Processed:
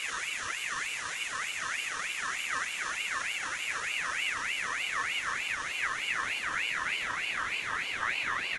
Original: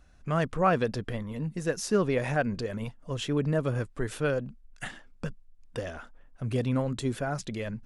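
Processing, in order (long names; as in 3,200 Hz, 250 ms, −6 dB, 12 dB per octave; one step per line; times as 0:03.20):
gliding playback speed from 67% → 116%
brickwall limiter −24 dBFS, peak gain reduction 11.5 dB
extreme stretch with random phases 26×, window 1.00 s, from 0:02.47
on a send: ambience of single reflections 26 ms −6.5 dB, 47 ms −6.5 dB
on the sum: ring modulator whose carrier an LFO sweeps 2,000 Hz, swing 30%, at 3.3 Hz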